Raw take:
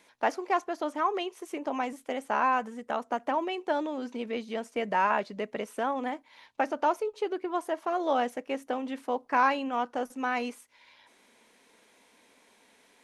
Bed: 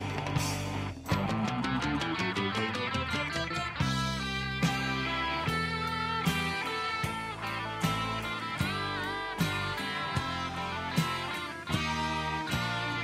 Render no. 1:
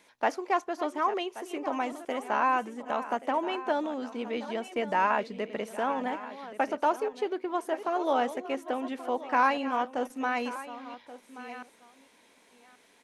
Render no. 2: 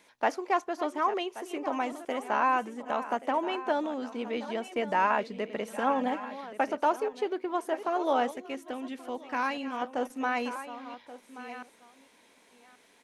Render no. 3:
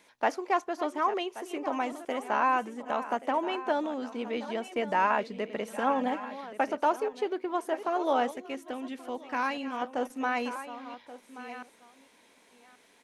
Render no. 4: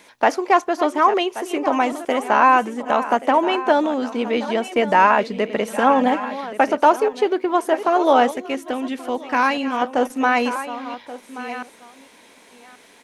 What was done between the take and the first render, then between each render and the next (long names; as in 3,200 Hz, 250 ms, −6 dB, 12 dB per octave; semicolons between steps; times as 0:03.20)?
delay that plays each chunk backwards 684 ms, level −13.5 dB; single-tap delay 1,129 ms −15.5 dB
0:05.67–0:06.41: comb filter 3.7 ms, depth 60%; 0:08.31–0:09.82: parametric band 780 Hz −8 dB 2.4 octaves
no processing that can be heard
level +12 dB; brickwall limiter −3 dBFS, peak gain reduction 2.5 dB